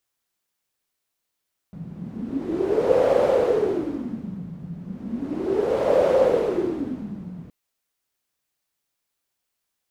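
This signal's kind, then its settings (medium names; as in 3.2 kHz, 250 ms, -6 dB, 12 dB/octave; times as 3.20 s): wind-like swept noise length 5.77 s, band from 170 Hz, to 540 Hz, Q 8.9, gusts 2, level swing 18 dB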